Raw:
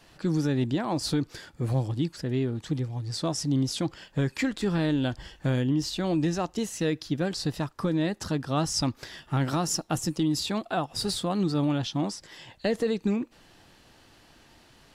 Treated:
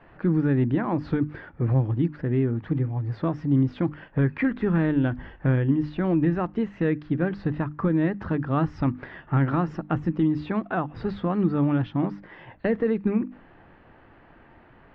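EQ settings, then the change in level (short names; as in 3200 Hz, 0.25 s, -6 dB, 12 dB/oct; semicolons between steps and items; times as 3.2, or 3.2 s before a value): LPF 2000 Hz 24 dB/oct; notches 50/100/150/200/250/300 Hz; dynamic EQ 680 Hz, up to -6 dB, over -42 dBFS, Q 1.2; +5.5 dB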